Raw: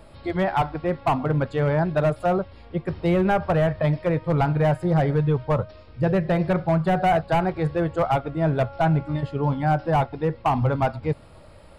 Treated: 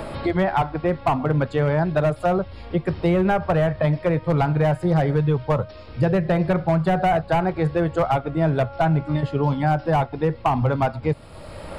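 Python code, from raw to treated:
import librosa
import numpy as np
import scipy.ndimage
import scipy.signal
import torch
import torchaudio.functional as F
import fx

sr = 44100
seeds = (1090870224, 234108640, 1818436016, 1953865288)

y = fx.band_squash(x, sr, depth_pct=70)
y = y * 10.0 ** (1.0 / 20.0)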